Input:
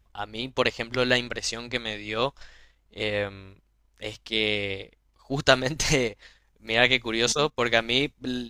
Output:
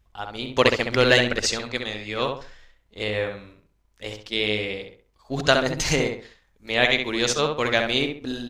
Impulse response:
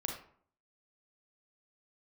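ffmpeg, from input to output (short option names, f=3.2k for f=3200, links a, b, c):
-filter_complex "[0:a]asettb=1/sr,asplit=3[a][b][c];[a]atrim=end=0.494[d];[b]atrim=start=0.49:end=1.59,asetpts=PTS-STARTPTS,afade=t=in:d=0.004:c=qsin,afade=t=out:st=1.096:d=0.004:c=qsin,acontrast=36[e];[c]atrim=start=1.586[f];[d][e]acrossfade=d=0.004:c1=hsin:c2=qsin[g];[g][f]acrossfade=d=0.004:c1=qsin:c2=hsin,asplit=2[h][i];[i]adelay=66,lowpass=f=2.5k:p=1,volume=-4dB,asplit=2[j][k];[k]adelay=66,lowpass=f=2.5k:p=1,volume=0.33,asplit=2[l][m];[m]adelay=66,lowpass=f=2.5k:p=1,volume=0.33,asplit=2[n][o];[o]adelay=66,lowpass=f=2.5k:p=1,volume=0.33[p];[j][l][n][p]amix=inputs=4:normalize=0[q];[h][q]amix=inputs=2:normalize=0"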